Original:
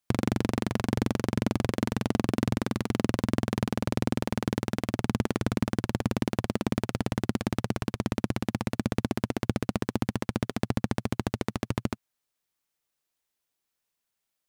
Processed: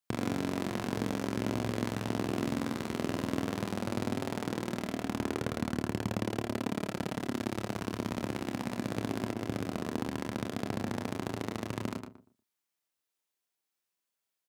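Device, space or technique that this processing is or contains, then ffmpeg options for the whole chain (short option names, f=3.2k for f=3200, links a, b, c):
slapback doubling: -filter_complex "[0:a]asplit=3[a][b][c];[b]adelay=26,volume=-7.5dB[d];[c]adelay=108,volume=-6dB[e];[a][d][e]amix=inputs=3:normalize=0,highpass=f=160:p=1,asplit=2[f][g];[g]adelay=29,volume=-8.5dB[h];[f][h]amix=inputs=2:normalize=0,asettb=1/sr,asplit=3[i][j][k];[i]atrim=end=9.344[l];[j]atrim=start=9.34:end=9.85,asetpts=PTS-STARTPTS,afade=t=in:d=0.004:c=qsin,afade=t=out:st=0.506:d=0.004:c=qsin,agate=range=-33dB:threshold=-28dB:ratio=3:detection=peak[m];[k]atrim=start=9.846[n];[l][m]acrossfade=d=0.004:c1=hsin:c2=qsin[o];[o][n]acrossfade=d=0.004:c1=qsin:c2=hsin,asplit=2[p][q];[q]adelay=119,lowpass=f=970:p=1,volume=-9.5dB,asplit=2[r][s];[s]adelay=119,lowpass=f=970:p=1,volume=0.26,asplit=2[t][u];[u]adelay=119,lowpass=f=970:p=1,volume=0.26[v];[p][r][t][v]amix=inputs=4:normalize=0,volume=-5.5dB"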